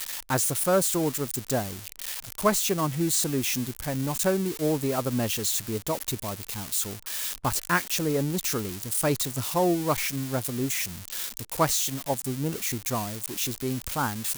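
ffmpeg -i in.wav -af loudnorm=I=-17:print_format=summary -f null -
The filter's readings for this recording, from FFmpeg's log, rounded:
Input Integrated:    -27.1 LUFS
Input True Peak:      -9.2 dBTP
Input LRA:             1.8 LU
Input Threshold:     -37.1 LUFS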